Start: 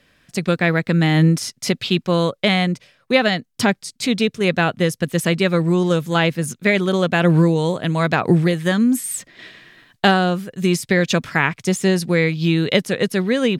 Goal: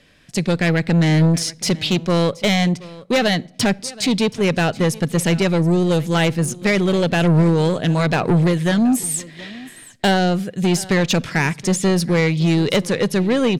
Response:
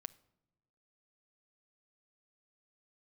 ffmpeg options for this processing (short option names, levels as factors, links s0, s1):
-filter_complex "[0:a]lowpass=11000,equalizer=f=1300:w=1.3:g=-4.5,asoftclip=type=tanh:threshold=0.15,aecho=1:1:725:0.1,asplit=2[s0][s1];[1:a]atrim=start_sample=2205[s2];[s1][s2]afir=irnorm=-1:irlink=0,volume=1.33[s3];[s0][s3]amix=inputs=2:normalize=0"